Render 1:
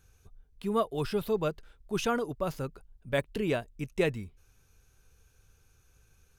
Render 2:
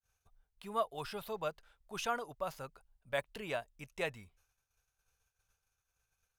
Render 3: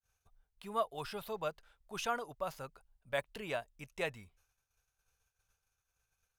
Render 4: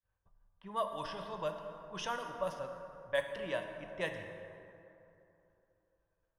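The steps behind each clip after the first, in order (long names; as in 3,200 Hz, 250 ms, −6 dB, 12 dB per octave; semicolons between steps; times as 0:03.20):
downward expander −54 dBFS; low shelf with overshoot 500 Hz −9.5 dB, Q 1.5; level −5 dB
no processing that can be heard
low-pass that shuts in the quiet parts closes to 1,500 Hz, open at −32.5 dBFS; EQ curve with evenly spaced ripples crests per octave 1.2, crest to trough 9 dB; dense smooth reverb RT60 3 s, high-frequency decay 0.45×, DRR 4.5 dB; level −1.5 dB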